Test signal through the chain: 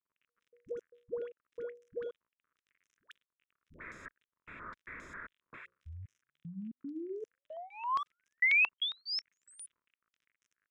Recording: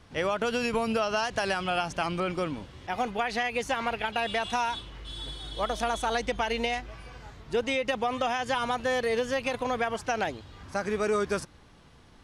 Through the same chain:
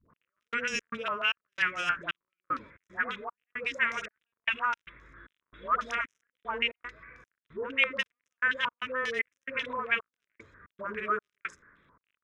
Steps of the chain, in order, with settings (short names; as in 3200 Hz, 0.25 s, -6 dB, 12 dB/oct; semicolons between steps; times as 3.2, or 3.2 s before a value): Wiener smoothing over 15 samples; low shelf 350 Hz -11 dB; notches 60/120/180/240/300/360/420/480/540 Hz; dispersion highs, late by 0.11 s, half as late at 610 Hz; step gate "x...xx.xxx..xxx" 114 bpm -60 dB; crackle 55/s -59 dBFS; tilt +1.5 dB/oct; fixed phaser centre 1900 Hz, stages 4; stepped low-pass 7.4 Hz 980–5900 Hz; gain +2 dB